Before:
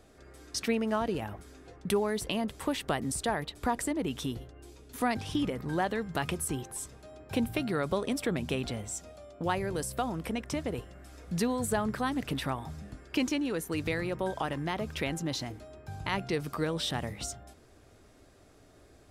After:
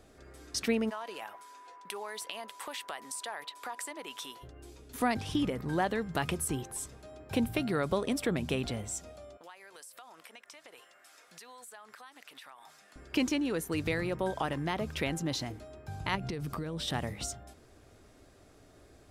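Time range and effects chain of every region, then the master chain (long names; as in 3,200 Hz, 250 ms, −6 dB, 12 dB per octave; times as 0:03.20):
0:00.89–0:04.42: high-pass filter 780 Hz + downward compressor 3 to 1, threshold −36 dBFS + steady tone 990 Hz −50 dBFS
0:09.37–0:12.96: high-pass filter 1,000 Hz + downward compressor 4 to 1, threshold −49 dBFS + one half of a high-frequency compander decoder only
0:16.15–0:16.88: low-shelf EQ 240 Hz +9.5 dB + downward compressor 12 to 1, threshold −32 dBFS
whole clip: no processing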